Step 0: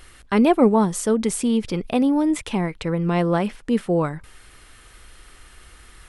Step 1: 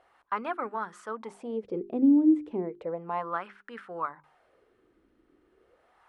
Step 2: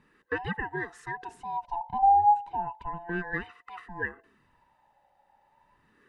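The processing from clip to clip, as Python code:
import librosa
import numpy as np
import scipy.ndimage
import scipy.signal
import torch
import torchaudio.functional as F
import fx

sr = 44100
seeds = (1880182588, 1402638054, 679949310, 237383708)

y1 = fx.wah_lfo(x, sr, hz=0.34, low_hz=290.0, high_hz=1500.0, q=4.0)
y1 = fx.hum_notches(y1, sr, base_hz=50, count=8)
y1 = F.gain(torch.from_numpy(y1), 1.0).numpy()
y2 = fx.band_swap(y1, sr, width_hz=500)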